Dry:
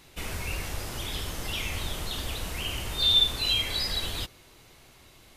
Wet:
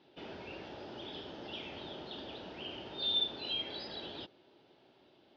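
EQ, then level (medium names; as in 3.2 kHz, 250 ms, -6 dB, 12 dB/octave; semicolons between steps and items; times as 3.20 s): distance through air 280 m; cabinet simulation 370–4300 Hz, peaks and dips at 490 Hz -7 dB, 720 Hz -7 dB, 1.1 kHz -7 dB, 2.1 kHz -8 dB, 4 kHz -8 dB; high-order bell 1.7 kHz -10 dB; +3.0 dB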